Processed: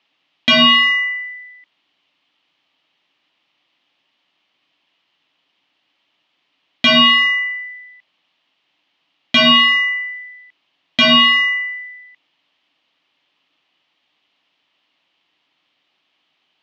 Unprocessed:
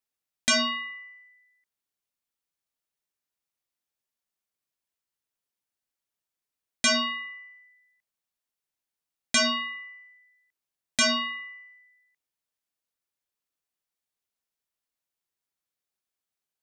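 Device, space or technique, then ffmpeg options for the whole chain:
overdrive pedal into a guitar cabinet: -filter_complex "[0:a]asplit=2[link_01][link_02];[link_02]highpass=frequency=720:poles=1,volume=25dB,asoftclip=type=tanh:threshold=-15.5dB[link_03];[link_01][link_03]amix=inputs=2:normalize=0,lowpass=frequency=6700:poles=1,volume=-6dB,highpass=77,equalizer=frequency=110:width_type=q:width=4:gain=4,equalizer=frequency=160:width_type=q:width=4:gain=7,equalizer=frequency=290:width_type=q:width=4:gain=10,equalizer=frequency=450:width_type=q:width=4:gain=-5,equalizer=frequency=1500:width_type=q:width=4:gain=-7,equalizer=frequency=3000:width_type=q:width=4:gain=7,lowpass=frequency=3800:width=0.5412,lowpass=frequency=3800:width=1.3066,volume=9dB"

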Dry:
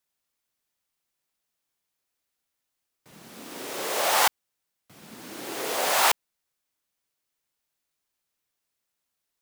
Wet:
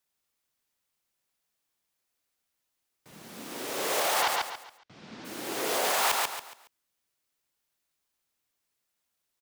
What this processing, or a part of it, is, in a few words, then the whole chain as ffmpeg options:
clipper into limiter: -filter_complex "[0:a]asplit=3[link_01][link_02][link_03];[link_01]afade=type=out:start_time=4.21:duration=0.02[link_04];[link_02]lowpass=frequency=5400:width=0.5412,lowpass=frequency=5400:width=1.3066,afade=type=in:start_time=4.21:duration=0.02,afade=type=out:start_time=5.24:duration=0.02[link_05];[link_03]afade=type=in:start_time=5.24:duration=0.02[link_06];[link_04][link_05][link_06]amix=inputs=3:normalize=0,aecho=1:1:139|278|417|556:0.398|0.127|0.0408|0.013,asoftclip=type=hard:threshold=-12dB,alimiter=limit=-17.5dB:level=0:latency=1:release=21"

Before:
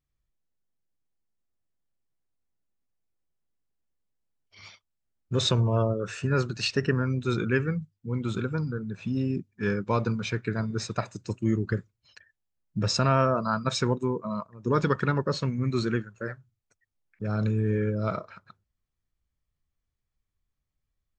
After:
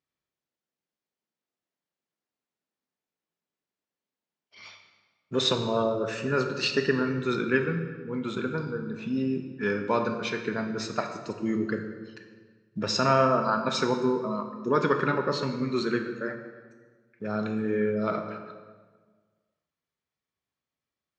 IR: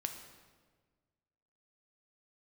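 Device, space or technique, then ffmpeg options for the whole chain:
supermarket ceiling speaker: -filter_complex "[0:a]highpass=240,lowpass=5600[link_01];[1:a]atrim=start_sample=2205[link_02];[link_01][link_02]afir=irnorm=-1:irlink=0,volume=3dB"

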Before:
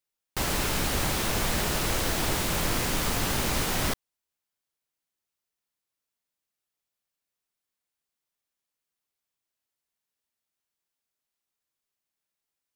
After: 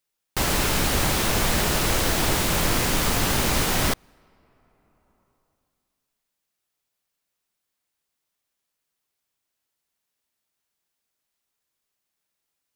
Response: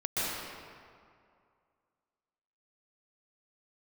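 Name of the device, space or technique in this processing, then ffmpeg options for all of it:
ducked reverb: -filter_complex "[0:a]asplit=3[link_01][link_02][link_03];[1:a]atrim=start_sample=2205[link_04];[link_02][link_04]afir=irnorm=-1:irlink=0[link_05];[link_03]apad=whole_len=562313[link_06];[link_05][link_06]sidechaincompress=threshold=-47dB:ratio=12:attack=5.8:release=869,volume=-19.5dB[link_07];[link_01][link_07]amix=inputs=2:normalize=0,volume=5dB"

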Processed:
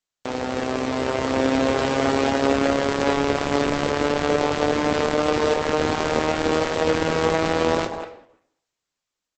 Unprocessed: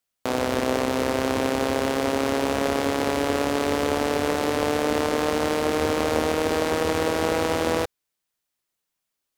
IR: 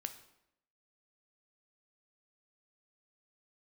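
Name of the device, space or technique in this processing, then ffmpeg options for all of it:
speakerphone in a meeting room: -filter_complex "[1:a]atrim=start_sample=2205[link_01];[0:a][link_01]afir=irnorm=-1:irlink=0,asplit=2[link_02][link_03];[link_03]adelay=190,highpass=300,lowpass=3400,asoftclip=type=hard:threshold=-19.5dB,volume=-7dB[link_04];[link_02][link_04]amix=inputs=2:normalize=0,dynaudnorm=framelen=380:gausssize=7:maxgain=6.5dB" -ar 48000 -c:a libopus -b:a 12k

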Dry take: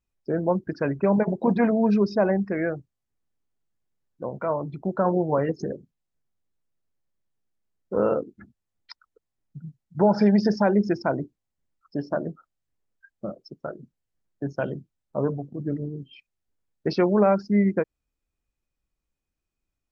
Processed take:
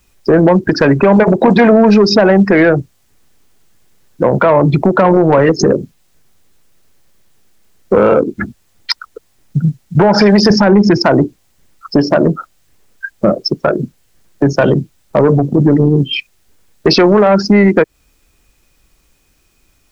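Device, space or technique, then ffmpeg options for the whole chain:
mastering chain: -filter_complex "[0:a]asettb=1/sr,asplit=3[link_01][link_02][link_03];[link_01]atrim=end=10.504[link_04];[link_02]atrim=start=10.5:end=10.98,asetpts=PTS-STARTPTS,afade=type=in:duration=0.004:curve=qsin,afade=type=out:start_time=0.476:duration=0.004:curve=qsin,bass=frequency=250:gain=14,treble=frequency=4000:gain=-4[link_05];[link_03]atrim=start=10.976[link_06];[link_04][link_05]acrossfade=duration=0.004:curve1=hsin:curve2=qsin[link_07];[link_07][link_06]acrossfade=duration=0.004:curve1=qsin:curve2=hsin,equalizer=frequency=390:width_type=o:width=0.77:gain=2,acrossover=split=280|950[link_08][link_09][link_10];[link_08]acompressor=threshold=-29dB:ratio=4[link_11];[link_09]acompressor=threshold=-23dB:ratio=4[link_12];[link_10]acompressor=threshold=-31dB:ratio=4[link_13];[link_11][link_12][link_13]amix=inputs=3:normalize=0,acompressor=threshold=-31dB:ratio=2,asoftclip=type=tanh:threshold=-23.5dB,tiltshelf=frequency=1300:gain=-3,asoftclip=type=hard:threshold=-26dB,alimiter=level_in=30.5dB:limit=-1dB:release=50:level=0:latency=1,volume=-1dB"

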